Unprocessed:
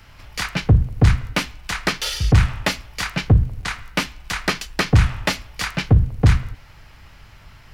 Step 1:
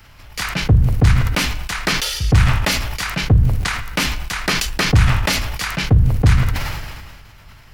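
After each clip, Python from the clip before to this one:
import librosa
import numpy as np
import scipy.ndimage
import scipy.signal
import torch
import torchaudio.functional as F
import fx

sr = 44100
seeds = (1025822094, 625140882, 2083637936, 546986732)

y = fx.high_shelf(x, sr, hz=9700.0, db=7.0)
y = fx.sustainer(y, sr, db_per_s=34.0)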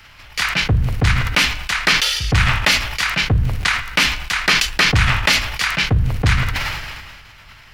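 y = fx.peak_eq(x, sr, hz=2500.0, db=10.5, octaves=2.9)
y = y * 10.0 ** (-4.0 / 20.0)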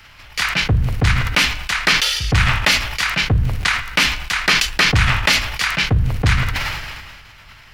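y = x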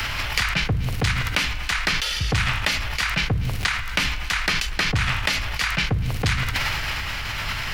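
y = x + 10.0 ** (-23.5 / 20.0) * np.pad(x, (int(237 * sr / 1000.0), 0))[:len(x)]
y = fx.band_squash(y, sr, depth_pct=100)
y = y * 10.0 ** (-6.5 / 20.0)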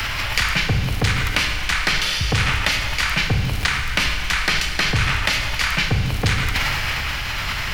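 y = fx.dmg_crackle(x, sr, seeds[0], per_s=160.0, level_db=-36.0)
y = fx.rev_schroeder(y, sr, rt60_s=1.9, comb_ms=30, drr_db=5.0)
y = y * 10.0 ** (2.0 / 20.0)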